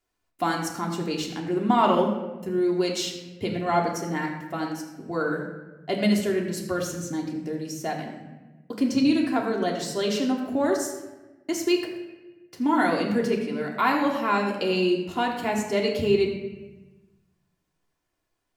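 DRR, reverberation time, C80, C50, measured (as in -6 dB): -1.0 dB, 1.2 s, 6.5 dB, 5.0 dB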